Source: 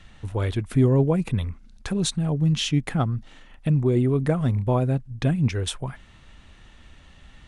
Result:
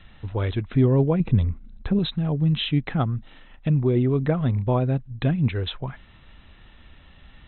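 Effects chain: brick-wall FIR low-pass 4.1 kHz; 1.20–1.99 s: tilt shelf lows +6 dB, about 670 Hz

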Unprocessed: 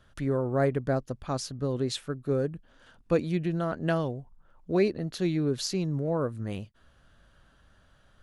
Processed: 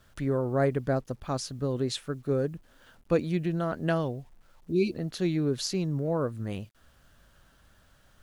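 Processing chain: spectral replace 4.72–4.92 s, 390–2200 Hz before; bit crusher 11-bit

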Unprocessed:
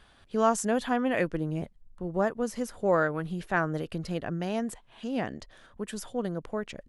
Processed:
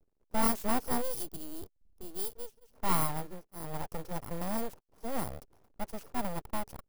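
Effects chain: bit-reversed sample order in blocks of 32 samples; 1.02–2.73 s: time-frequency box 270–2700 Hz -26 dB; hysteresis with a dead band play -45.5 dBFS; FFT filter 110 Hz 0 dB, 420 Hz +14 dB, 1.7 kHz -6 dB; full-wave rectifier; treble shelf 4.1 kHz +8 dB; 2.15–4.31 s: tremolo of two beating tones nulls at 1.1 Hz; trim -8.5 dB

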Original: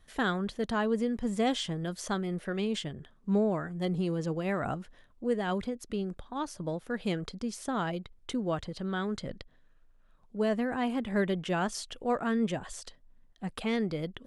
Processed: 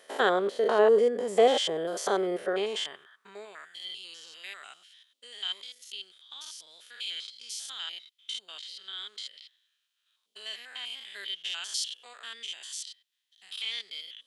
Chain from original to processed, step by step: spectrogram pixelated in time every 100 ms; small resonant body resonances 400/3100 Hz, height 8 dB; high-pass sweep 540 Hz -> 3.4 kHz, 2.42–3.76 s; trim +6.5 dB

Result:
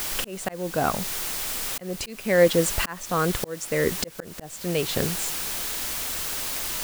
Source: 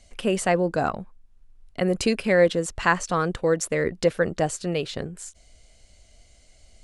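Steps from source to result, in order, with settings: added noise white -36 dBFS; slow attack 656 ms; trim +6 dB

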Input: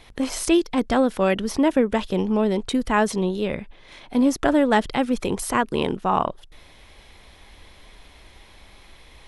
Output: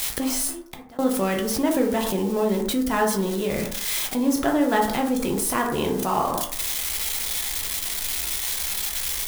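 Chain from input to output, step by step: zero-crossing glitches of -21.5 dBFS; 0.47–0.99 s: inverted gate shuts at -18 dBFS, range -31 dB; plate-style reverb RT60 0.58 s, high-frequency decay 0.4×, DRR 1 dB; in parallel at 0 dB: compressor with a negative ratio -29 dBFS, ratio -1; on the sum: trim -6 dB

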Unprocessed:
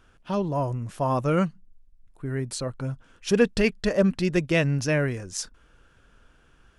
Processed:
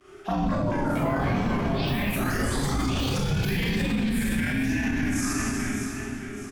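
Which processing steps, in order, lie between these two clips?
pitch shift switched off and on +1.5 st, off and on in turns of 252 ms; high-order bell 1.5 kHz +12.5 dB 1.3 oct; touch-sensitive phaser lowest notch 210 Hz, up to 1.6 kHz, full sweep at -23.5 dBFS; Schroeder reverb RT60 1.7 s, combs from 31 ms, DRR -9.5 dB; vibrato 0.84 Hz 71 cents; on a send: feedback delay 631 ms, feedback 40%, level -15.5 dB; on the sum: compression 3:1, threshold -21 dBFS, peak gain reduction 10.5 dB; ever faster or slower copies 290 ms, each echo +5 st, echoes 3; peak limiter -21.5 dBFS, peak gain reduction 13 dB; frequency shift -400 Hz; speed mistake 24 fps film run at 25 fps; trim +4 dB

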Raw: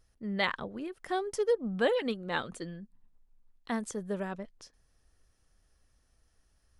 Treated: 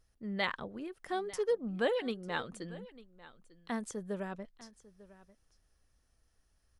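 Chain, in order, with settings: delay 897 ms -19 dB; trim -3.5 dB

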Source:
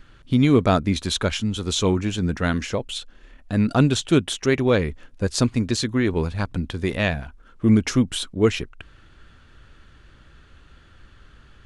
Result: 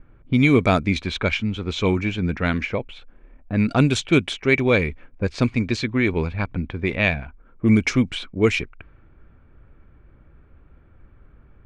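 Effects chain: level-controlled noise filter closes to 780 Hz, open at -13.5 dBFS; peaking EQ 2.3 kHz +13.5 dB 0.21 oct

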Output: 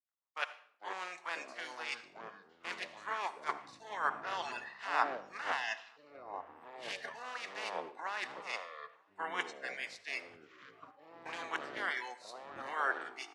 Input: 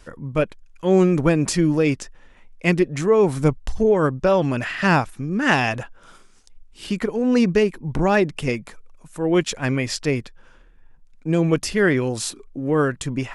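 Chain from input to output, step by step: spectral contrast reduction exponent 0.31; recorder AGC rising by 19 dB/s; spectral noise reduction 27 dB; reverse; compression 8:1, threshold -27 dBFS, peak gain reduction 17 dB; reverse; ladder band-pass 1.3 kHz, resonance 25%; delay 941 ms -23 dB; ever faster or slower copies 272 ms, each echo -7 st, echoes 3, each echo -6 dB; on a send at -12 dB: reverberation RT60 1.0 s, pre-delay 63 ms; on the sum: three bands expanded up and down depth 100%; trim +6 dB

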